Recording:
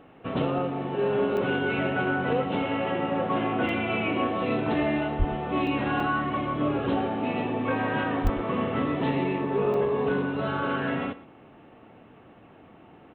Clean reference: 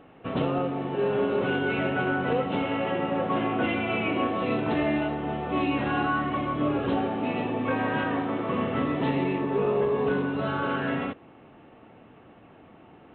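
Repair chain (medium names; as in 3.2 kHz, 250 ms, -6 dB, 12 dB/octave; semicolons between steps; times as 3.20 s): 5.18–5.30 s: high-pass 140 Hz 24 dB/octave; 8.23–8.35 s: high-pass 140 Hz 24 dB/octave; interpolate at 1.37/3.69/5.67/6.00/8.27/9.74 s, 2.7 ms; inverse comb 117 ms -17.5 dB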